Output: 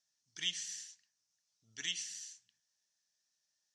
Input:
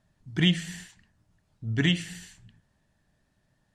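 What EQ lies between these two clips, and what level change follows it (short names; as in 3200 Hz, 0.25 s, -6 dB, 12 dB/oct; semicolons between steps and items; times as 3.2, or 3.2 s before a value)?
band-pass 5800 Hz, Q 4.9; +8.0 dB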